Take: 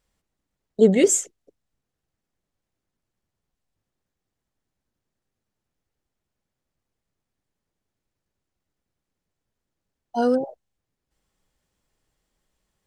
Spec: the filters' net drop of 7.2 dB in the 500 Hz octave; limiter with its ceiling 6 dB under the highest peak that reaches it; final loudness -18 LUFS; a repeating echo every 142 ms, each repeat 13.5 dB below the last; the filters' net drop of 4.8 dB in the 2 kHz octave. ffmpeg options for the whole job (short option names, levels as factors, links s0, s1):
-af "equalizer=f=500:t=o:g=-8.5,equalizer=f=2000:t=o:g=-5.5,alimiter=limit=0.178:level=0:latency=1,aecho=1:1:142|284:0.211|0.0444,volume=2.66"